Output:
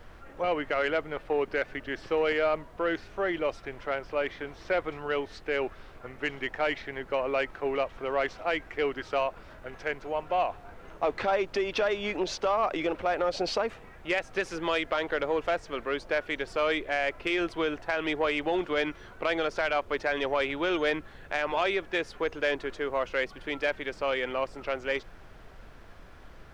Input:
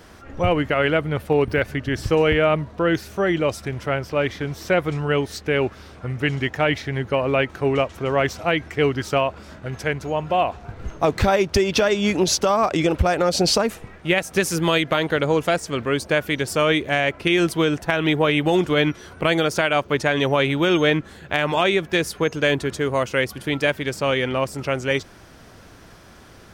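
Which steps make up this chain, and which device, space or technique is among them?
aircraft cabin announcement (BPF 400–3000 Hz; soft clip -11 dBFS, distortion -20 dB; brown noise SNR 18 dB); gain -5.5 dB

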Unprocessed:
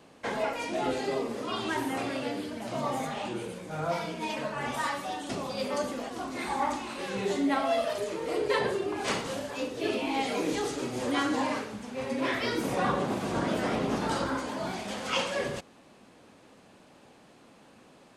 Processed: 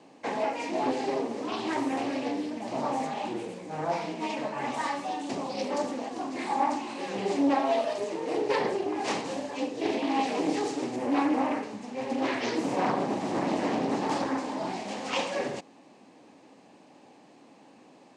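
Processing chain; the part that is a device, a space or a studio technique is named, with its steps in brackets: 10.96–11.63 band shelf 4900 Hz -8.5 dB; full-range speaker at full volume (Doppler distortion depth 0.67 ms; speaker cabinet 160–8500 Hz, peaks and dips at 290 Hz +6 dB, 820 Hz +5 dB, 1400 Hz -8 dB, 3400 Hz -4 dB)

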